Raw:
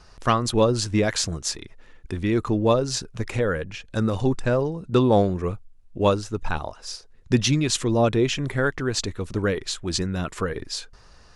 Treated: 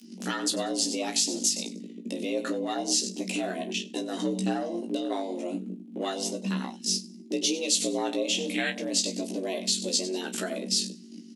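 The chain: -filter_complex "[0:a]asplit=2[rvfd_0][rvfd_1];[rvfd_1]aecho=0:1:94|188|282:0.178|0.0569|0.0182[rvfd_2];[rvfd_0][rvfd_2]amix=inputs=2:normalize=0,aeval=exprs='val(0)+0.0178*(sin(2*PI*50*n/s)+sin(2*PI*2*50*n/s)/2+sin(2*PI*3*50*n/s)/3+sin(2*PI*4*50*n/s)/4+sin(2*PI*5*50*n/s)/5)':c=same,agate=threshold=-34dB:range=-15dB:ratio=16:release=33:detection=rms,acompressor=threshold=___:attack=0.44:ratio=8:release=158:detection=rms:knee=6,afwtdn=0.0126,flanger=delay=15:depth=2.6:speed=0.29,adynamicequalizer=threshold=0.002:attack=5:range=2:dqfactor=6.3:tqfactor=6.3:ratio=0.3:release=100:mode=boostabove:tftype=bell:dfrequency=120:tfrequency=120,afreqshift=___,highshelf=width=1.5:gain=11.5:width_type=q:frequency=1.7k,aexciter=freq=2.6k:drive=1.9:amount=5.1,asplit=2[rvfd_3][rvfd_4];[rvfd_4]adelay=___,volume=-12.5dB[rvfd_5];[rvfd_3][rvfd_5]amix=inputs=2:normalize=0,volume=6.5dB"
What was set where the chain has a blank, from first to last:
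-29dB, 180, 32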